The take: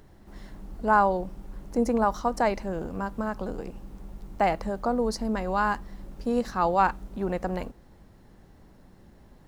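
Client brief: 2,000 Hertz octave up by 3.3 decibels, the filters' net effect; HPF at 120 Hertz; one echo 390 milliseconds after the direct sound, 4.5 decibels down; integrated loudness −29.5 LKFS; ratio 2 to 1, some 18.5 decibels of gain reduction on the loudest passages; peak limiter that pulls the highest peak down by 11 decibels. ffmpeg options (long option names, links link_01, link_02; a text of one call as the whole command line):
ffmpeg -i in.wav -af "highpass=120,equalizer=frequency=2000:width_type=o:gain=5,acompressor=threshold=-50dB:ratio=2,alimiter=level_in=12dB:limit=-24dB:level=0:latency=1,volume=-12dB,aecho=1:1:390:0.596,volume=16.5dB" out.wav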